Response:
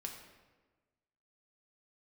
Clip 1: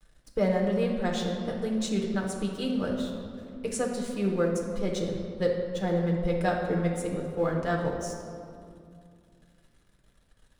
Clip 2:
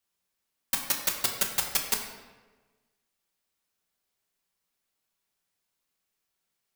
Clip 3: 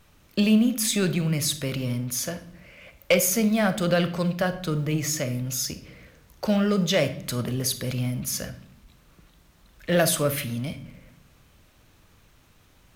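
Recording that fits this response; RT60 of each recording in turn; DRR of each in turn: 2; 2.4 s, 1.3 s, non-exponential decay; −1.0, 1.0, 11.0 decibels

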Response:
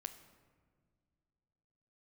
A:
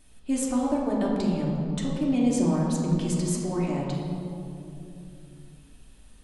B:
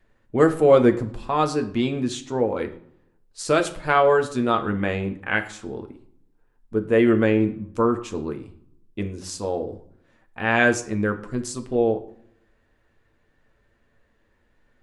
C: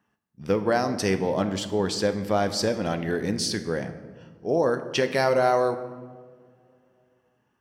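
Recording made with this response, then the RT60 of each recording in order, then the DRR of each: C; 3.0 s, 0.65 s, non-exponential decay; −5.0, 5.0, 8.5 decibels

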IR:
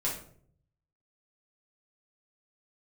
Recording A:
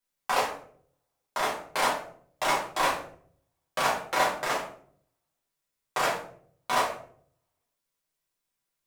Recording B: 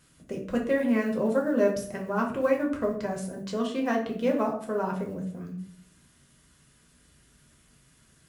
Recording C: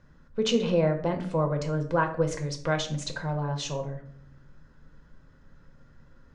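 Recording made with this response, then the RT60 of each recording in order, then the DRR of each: A; 0.60, 0.60, 0.60 seconds; −6.0, −0.5, 4.0 decibels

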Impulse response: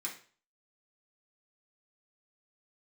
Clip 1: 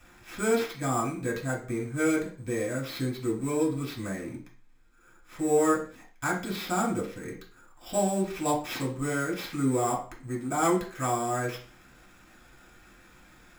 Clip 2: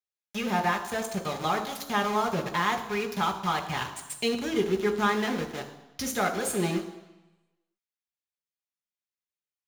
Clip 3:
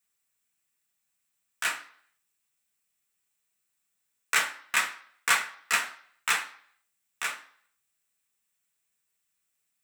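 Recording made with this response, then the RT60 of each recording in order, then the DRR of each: 1; 0.40, 1.0, 0.55 seconds; −4.0, 3.5, 2.0 decibels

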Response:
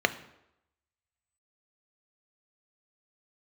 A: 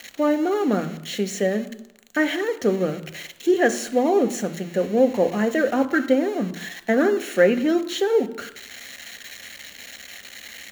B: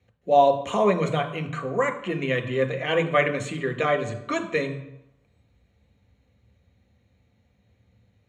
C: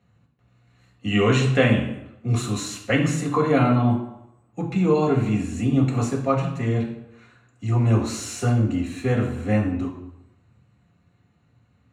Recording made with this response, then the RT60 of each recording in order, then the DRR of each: A; 0.85, 0.85, 0.85 seconds; 10.0, 5.5, −1.5 decibels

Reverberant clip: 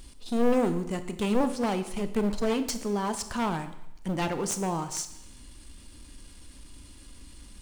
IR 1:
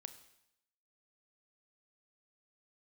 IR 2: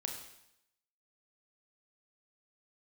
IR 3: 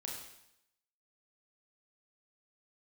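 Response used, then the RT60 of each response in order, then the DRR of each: 1; 0.80, 0.80, 0.80 seconds; 9.5, 2.0, −2.0 decibels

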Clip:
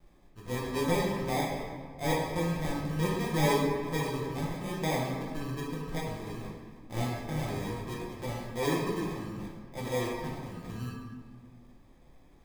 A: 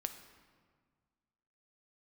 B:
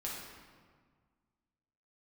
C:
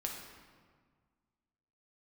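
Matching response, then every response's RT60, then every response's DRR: B; 1.7, 1.7, 1.7 seconds; 7.5, −5.0, −0.5 decibels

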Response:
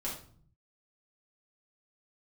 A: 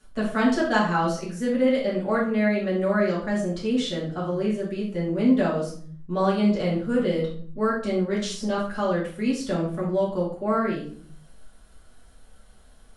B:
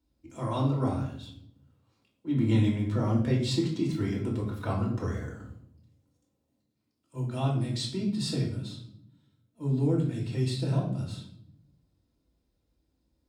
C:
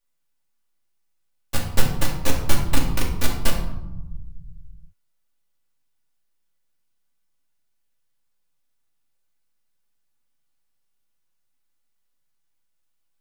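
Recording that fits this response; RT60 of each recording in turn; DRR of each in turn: A; 0.50, 0.65, 1.0 seconds; −6.5, −2.5, −2.0 decibels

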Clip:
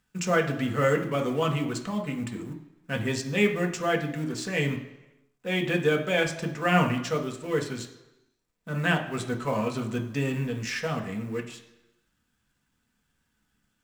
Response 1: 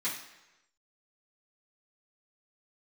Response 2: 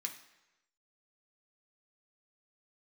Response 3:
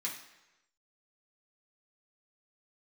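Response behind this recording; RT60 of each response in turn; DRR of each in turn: 2; 1.0, 1.0, 1.0 seconds; −12.0, 2.0, −5.0 decibels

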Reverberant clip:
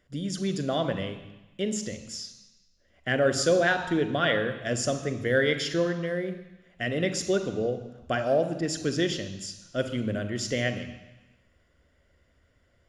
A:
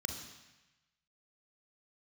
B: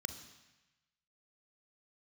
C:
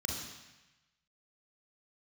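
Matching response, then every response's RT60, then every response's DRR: B; 1.0, 1.0, 1.0 seconds; 4.0, 8.5, −1.0 decibels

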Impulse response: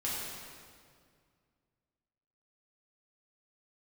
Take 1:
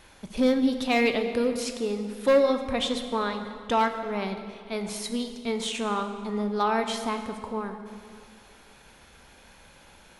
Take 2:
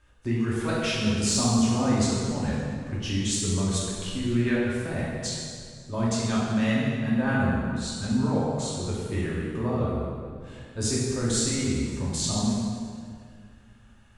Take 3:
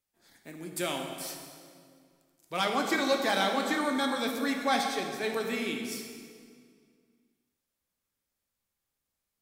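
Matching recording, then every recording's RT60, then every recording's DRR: 2; 2.1, 2.1, 2.1 seconds; 6.0, −7.5, 1.5 decibels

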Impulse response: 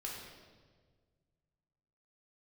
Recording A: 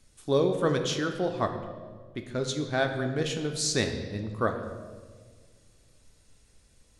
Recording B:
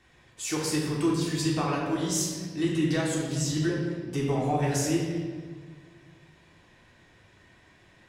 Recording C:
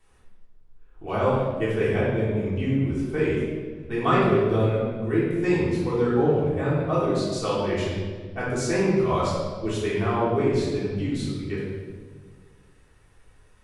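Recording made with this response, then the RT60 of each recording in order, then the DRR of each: B; 1.6, 1.6, 1.6 seconds; 4.5, −4.0, −9.5 decibels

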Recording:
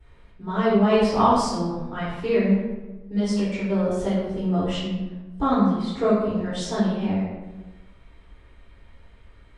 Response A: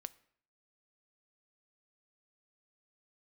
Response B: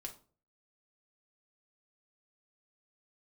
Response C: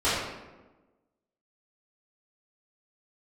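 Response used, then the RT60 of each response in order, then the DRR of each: C; 0.60, 0.40, 1.2 seconds; 15.5, 1.5, −14.0 decibels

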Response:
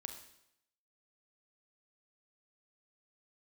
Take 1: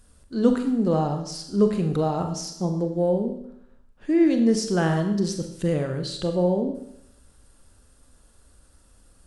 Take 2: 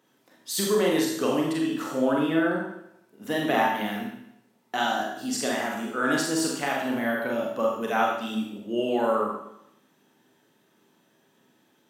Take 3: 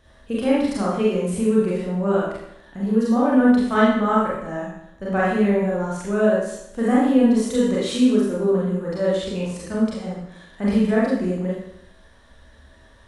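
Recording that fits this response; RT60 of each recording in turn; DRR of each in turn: 1; 0.80, 0.80, 0.80 seconds; 5.5, −2.0, −7.0 decibels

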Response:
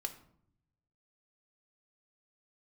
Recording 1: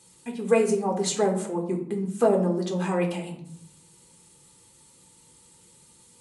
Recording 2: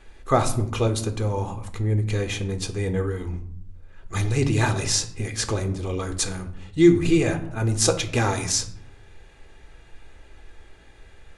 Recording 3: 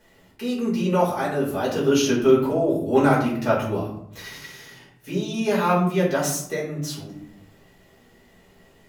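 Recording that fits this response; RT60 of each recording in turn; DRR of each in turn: 2; 0.65, 0.65, 0.65 seconds; 0.5, 6.5, −7.0 decibels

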